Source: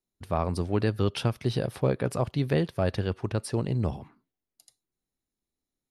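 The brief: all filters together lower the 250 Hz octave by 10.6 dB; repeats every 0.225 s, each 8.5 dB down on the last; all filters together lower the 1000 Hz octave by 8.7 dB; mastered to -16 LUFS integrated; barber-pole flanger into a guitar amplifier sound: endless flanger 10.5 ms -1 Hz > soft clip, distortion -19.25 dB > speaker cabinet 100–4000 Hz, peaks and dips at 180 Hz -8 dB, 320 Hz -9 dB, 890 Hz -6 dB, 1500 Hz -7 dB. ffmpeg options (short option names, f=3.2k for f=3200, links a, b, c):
-filter_complex "[0:a]equalizer=f=250:t=o:g=-8,equalizer=f=1k:t=o:g=-7.5,aecho=1:1:225|450|675|900:0.376|0.143|0.0543|0.0206,asplit=2[a][b];[b]adelay=10.5,afreqshift=-1[c];[a][c]amix=inputs=2:normalize=1,asoftclip=threshold=-23.5dB,highpass=100,equalizer=f=180:t=q:w=4:g=-8,equalizer=f=320:t=q:w=4:g=-9,equalizer=f=890:t=q:w=4:g=-6,equalizer=f=1.5k:t=q:w=4:g=-7,lowpass=f=4k:w=0.5412,lowpass=f=4k:w=1.3066,volume=22.5dB"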